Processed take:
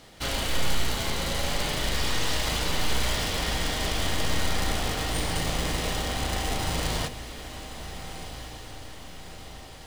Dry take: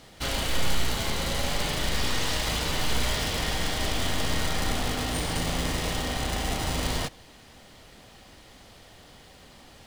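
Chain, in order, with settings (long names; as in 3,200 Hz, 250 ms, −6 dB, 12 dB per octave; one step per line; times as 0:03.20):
mains-hum notches 50/100/150/200/250 Hz
feedback delay with all-pass diffusion 1,451 ms, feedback 53%, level −12 dB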